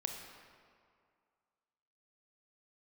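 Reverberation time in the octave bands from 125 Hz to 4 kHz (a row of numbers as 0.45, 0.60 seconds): 2.0, 2.1, 2.1, 2.3, 1.8, 1.3 seconds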